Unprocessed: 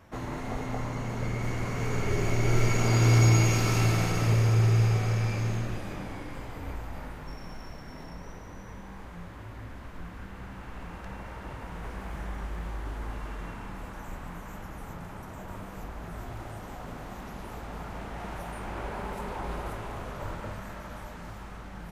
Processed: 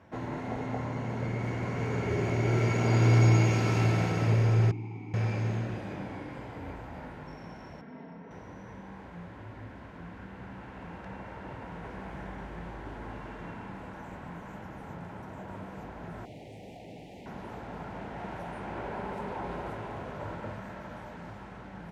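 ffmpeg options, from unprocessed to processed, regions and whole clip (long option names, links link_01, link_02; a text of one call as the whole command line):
ffmpeg -i in.wav -filter_complex "[0:a]asettb=1/sr,asplit=3[link_01][link_02][link_03];[link_01]atrim=end=4.714[link_04];[link_02]atrim=start=4.71:end=5.14,asetpts=PTS-STARTPTS,afade=type=in:duration=0.004:curve=qsin,afade=type=out:start_time=0.426:duration=0.004:curve=qsin,acrossover=split=2800[link_05][link_06];[link_06]acompressor=threshold=-50dB:ratio=4:attack=1:release=60[link_07];[link_05][link_07]amix=inputs=2:normalize=0,asplit=3[link_08][link_09][link_10];[link_08]bandpass=frequency=300:width_type=q:width=8,volume=0dB[link_11];[link_09]bandpass=frequency=870:width_type=q:width=8,volume=-6dB[link_12];[link_10]bandpass=frequency=2240:width_type=q:width=8,volume=-9dB[link_13];[link_11][link_12][link_13]amix=inputs=3:normalize=0,bass=frequency=250:gain=9,treble=frequency=4000:gain=15[link_14];[link_03]atrim=start=5.136[link_15];[link_04][link_14]acrossfade=duration=0.004:curve1=hsin:curve2=qsin[link_16];[link_16][link_15]acrossfade=duration=0.004:curve1=qsin:curve2=hsin,asettb=1/sr,asplit=3[link_17][link_18][link_19];[link_17]atrim=end=7.814[link_20];[link_18]atrim=start=7.81:end=8.31,asetpts=PTS-STARTPTS,afade=type=in:duration=0.004:curve=qsin,afade=type=out:start_time=0.496:duration=0.004:curve=qsin,highpass=160,lowpass=2600,equalizer=frequency=1200:width=0.36:gain=-4.5,aecho=1:1:4.4:0.57,atrim=end_sample=22050[link_21];[link_19]atrim=start=8.306[link_22];[link_20][link_21]acrossfade=duration=0.004:curve1=hsin:curve2=qsin[link_23];[link_23][link_22]acrossfade=duration=0.004:curve1=qsin:curve2=hsin,asettb=1/sr,asplit=3[link_24][link_25][link_26];[link_24]atrim=end=16.254[link_27];[link_25]atrim=start=16.25:end=17.26,asetpts=PTS-STARTPTS,afade=type=in:duration=0.004:curve=qsin,afade=type=out:start_time=1.006:duration=0.004:curve=qsin,aeval=exprs='0.0106*(abs(mod(val(0)/0.0106+3,4)-2)-1)':channel_layout=same,acrusher=bits=4:mode=log:mix=0:aa=0.000001,asuperstop=centerf=1300:order=8:qfactor=1[link_28];[link_26]atrim=start=17.256[link_29];[link_27][link_28]acrossfade=duration=0.004:curve1=hsin:curve2=qsin[link_30];[link_30][link_29]acrossfade=duration=0.004:curve1=qsin:curve2=hsin,highpass=99,aemphasis=mode=reproduction:type=75fm,bandreject=frequency=1200:width=7.9" out.wav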